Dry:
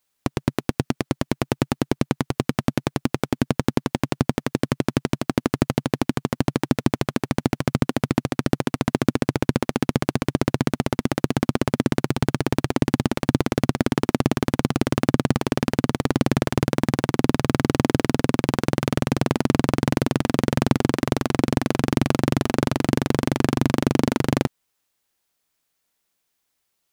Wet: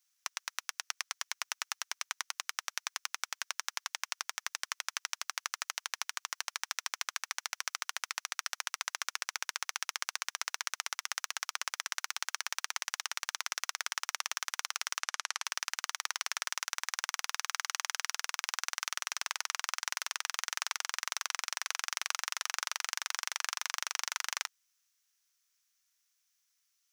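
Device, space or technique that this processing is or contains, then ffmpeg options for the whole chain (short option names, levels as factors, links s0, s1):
headphones lying on a table: -filter_complex "[0:a]highpass=f=1200:w=0.5412,highpass=f=1200:w=1.3066,equalizer=f=5900:t=o:w=0.45:g=10.5,asettb=1/sr,asplit=3[s0][s1][s2];[s0]atrim=end=15.014[s3];[s1]atrim=start=15.01:end=15.45,asetpts=PTS-STARTPTS,afade=t=in:d=0.004:c=qsin,afade=t=out:st=0.436:d=0.004:c=qsin,lowpass=10000[s4];[s2]atrim=start=15.446[s5];[s3][s4]acrossfade=d=0.004:c1=hsin:c2=qsin[s6];[s6][s5]acrossfade=d=0.004:c1=qsin:c2=hsin,volume=0.562"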